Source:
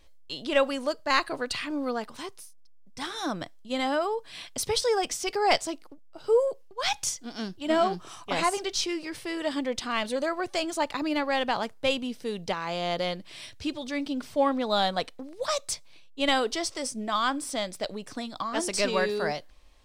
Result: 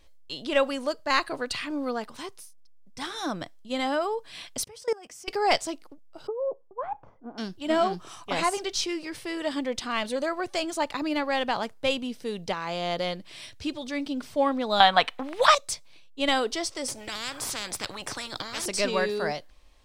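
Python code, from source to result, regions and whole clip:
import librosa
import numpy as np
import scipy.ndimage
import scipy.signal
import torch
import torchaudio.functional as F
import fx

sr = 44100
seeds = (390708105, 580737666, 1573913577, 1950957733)

y = fx.chain(x, sr, fx.highpass(hz=46.0, slope=12),
    fx.peak_eq(hz=3800.0, db=-9.5, octaves=0.46),
    fx.level_steps(step_db=23), at=(4.64, 5.28))
y = fx.chain(y, sr, fx.low_shelf(hz=220.0, db=-9.5),
    fx.over_compress(threshold_db=-28.0, ratio=-1.0),
    fx.lowpass(hz=1100.0, slope=24), at=(6.27, 7.38))
y = fx.chain(y, sr, fx.band_shelf(hz=1600.0, db=12.5, octaves=2.6),
    fx.band_squash(depth_pct=70), at=(14.8, 15.55))
y = fx.chain(y, sr, fx.tilt_shelf(db=9.5, hz=770.0),
    fx.spectral_comp(ratio=10.0), at=(16.88, 18.66))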